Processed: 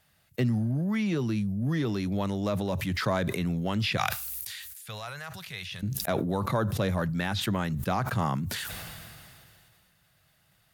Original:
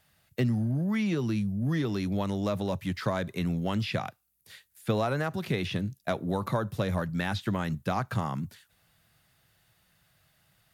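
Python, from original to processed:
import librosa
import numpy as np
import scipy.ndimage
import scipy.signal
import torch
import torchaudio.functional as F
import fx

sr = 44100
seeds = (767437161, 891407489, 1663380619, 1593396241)

y = fx.tone_stack(x, sr, knobs='10-0-10', at=(3.97, 5.83))
y = fx.sustainer(y, sr, db_per_s=24.0)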